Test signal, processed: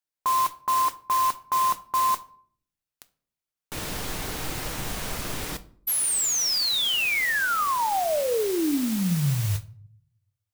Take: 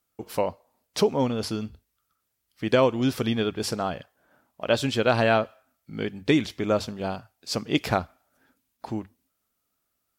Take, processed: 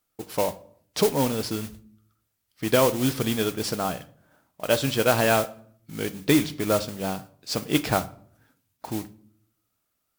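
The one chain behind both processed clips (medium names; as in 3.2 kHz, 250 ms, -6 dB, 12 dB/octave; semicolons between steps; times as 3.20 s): modulation noise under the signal 11 dB; simulated room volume 700 m³, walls furnished, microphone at 0.51 m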